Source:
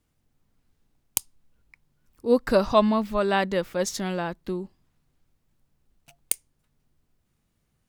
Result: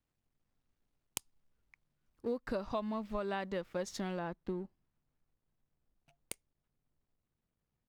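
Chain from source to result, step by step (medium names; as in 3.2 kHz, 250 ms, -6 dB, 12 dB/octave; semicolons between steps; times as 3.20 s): companding laws mixed up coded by A; low-pass 3.8 kHz 6 dB/octave, from 4.19 s 1.6 kHz; compression 10:1, threshold -29 dBFS, peak gain reduction 16 dB; trim -4 dB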